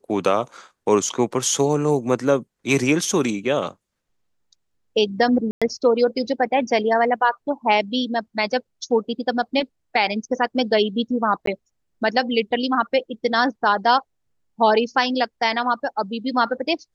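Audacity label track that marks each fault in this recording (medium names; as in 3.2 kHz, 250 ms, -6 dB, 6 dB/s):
5.510000	5.620000	dropout 106 ms
11.460000	11.470000	dropout 13 ms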